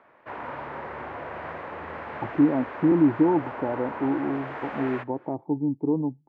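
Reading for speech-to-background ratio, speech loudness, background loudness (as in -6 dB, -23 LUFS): 11.0 dB, -25.5 LUFS, -36.5 LUFS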